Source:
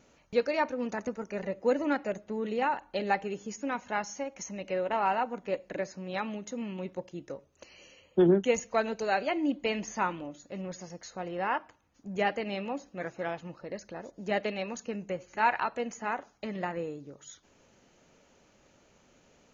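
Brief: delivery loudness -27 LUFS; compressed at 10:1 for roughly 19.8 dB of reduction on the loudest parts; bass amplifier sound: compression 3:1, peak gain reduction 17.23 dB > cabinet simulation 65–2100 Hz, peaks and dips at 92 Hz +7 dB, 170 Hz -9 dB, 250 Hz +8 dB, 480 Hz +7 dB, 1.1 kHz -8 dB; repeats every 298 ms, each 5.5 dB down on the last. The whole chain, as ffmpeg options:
-af "acompressor=threshold=0.0112:ratio=10,aecho=1:1:298|596|894|1192|1490|1788|2086:0.531|0.281|0.149|0.079|0.0419|0.0222|0.0118,acompressor=threshold=0.00112:ratio=3,highpass=f=65:w=0.5412,highpass=f=65:w=1.3066,equalizer=f=92:t=q:w=4:g=7,equalizer=f=170:t=q:w=4:g=-9,equalizer=f=250:t=q:w=4:g=8,equalizer=f=480:t=q:w=4:g=7,equalizer=f=1100:t=q:w=4:g=-8,lowpass=f=2100:w=0.5412,lowpass=f=2100:w=1.3066,volume=26.6"

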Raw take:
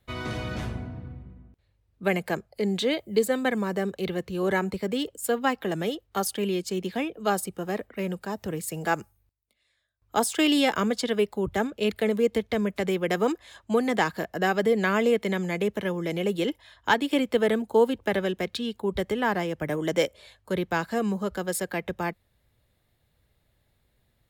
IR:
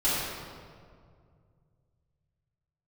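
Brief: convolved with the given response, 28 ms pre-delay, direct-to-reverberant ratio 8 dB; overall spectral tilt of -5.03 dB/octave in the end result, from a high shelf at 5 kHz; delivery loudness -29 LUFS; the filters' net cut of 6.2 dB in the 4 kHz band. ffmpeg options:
-filter_complex "[0:a]equalizer=f=4000:t=o:g=-6.5,highshelf=f=5000:g=-6,asplit=2[s0][s1];[1:a]atrim=start_sample=2205,adelay=28[s2];[s1][s2]afir=irnorm=-1:irlink=0,volume=0.0944[s3];[s0][s3]amix=inputs=2:normalize=0,volume=0.794"

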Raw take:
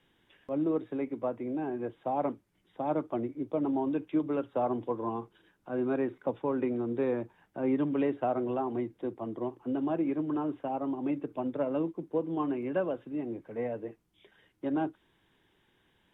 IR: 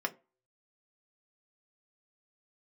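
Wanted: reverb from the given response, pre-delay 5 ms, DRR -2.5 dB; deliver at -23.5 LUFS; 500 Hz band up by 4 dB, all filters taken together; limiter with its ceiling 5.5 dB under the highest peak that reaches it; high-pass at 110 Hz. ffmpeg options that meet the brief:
-filter_complex "[0:a]highpass=110,equalizer=f=500:t=o:g=5,alimiter=limit=0.1:level=0:latency=1,asplit=2[s0][s1];[1:a]atrim=start_sample=2205,adelay=5[s2];[s1][s2]afir=irnorm=-1:irlink=0,volume=0.75[s3];[s0][s3]amix=inputs=2:normalize=0,volume=1.5"

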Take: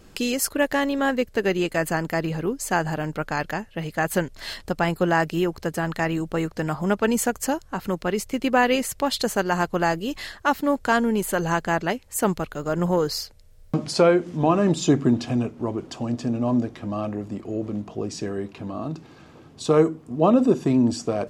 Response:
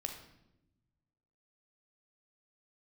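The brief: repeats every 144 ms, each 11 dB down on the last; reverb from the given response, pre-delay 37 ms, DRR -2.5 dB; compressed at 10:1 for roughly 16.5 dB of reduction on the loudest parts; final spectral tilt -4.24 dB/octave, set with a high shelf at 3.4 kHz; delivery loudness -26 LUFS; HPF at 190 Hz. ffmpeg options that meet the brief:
-filter_complex "[0:a]highpass=190,highshelf=f=3400:g=7.5,acompressor=threshold=0.0316:ratio=10,aecho=1:1:144|288|432:0.282|0.0789|0.0221,asplit=2[s0][s1];[1:a]atrim=start_sample=2205,adelay=37[s2];[s1][s2]afir=irnorm=-1:irlink=0,volume=1.41[s3];[s0][s3]amix=inputs=2:normalize=0,volume=1.58"

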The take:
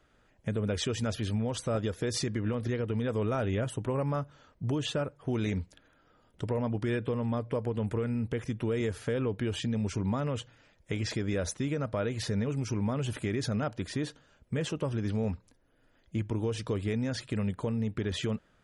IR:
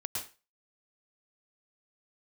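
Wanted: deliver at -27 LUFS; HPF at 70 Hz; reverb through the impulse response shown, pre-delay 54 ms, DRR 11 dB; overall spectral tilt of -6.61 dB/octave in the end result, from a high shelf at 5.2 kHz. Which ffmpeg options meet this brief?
-filter_complex "[0:a]highpass=70,highshelf=f=5200:g=-7,asplit=2[s0][s1];[1:a]atrim=start_sample=2205,adelay=54[s2];[s1][s2]afir=irnorm=-1:irlink=0,volume=0.224[s3];[s0][s3]amix=inputs=2:normalize=0,volume=1.88"

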